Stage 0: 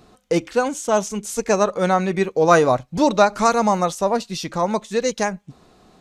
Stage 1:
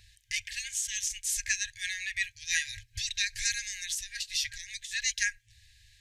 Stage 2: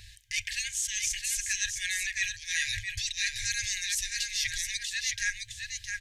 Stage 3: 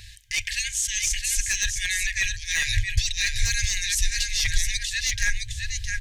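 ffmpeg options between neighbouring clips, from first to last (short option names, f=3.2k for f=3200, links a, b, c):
-af "afftfilt=real='re*(1-between(b*sr/4096,110,1600))':imag='im*(1-between(b*sr/4096,110,1600))':win_size=4096:overlap=0.75"
-af "areverse,acompressor=threshold=-37dB:ratio=6,areverse,aecho=1:1:663:0.531,volume=8.5dB"
-af "aeval=exprs='clip(val(0),-1,0.0841)':c=same,asubboost=boost=9:cutoff=95,volume=5.5dB"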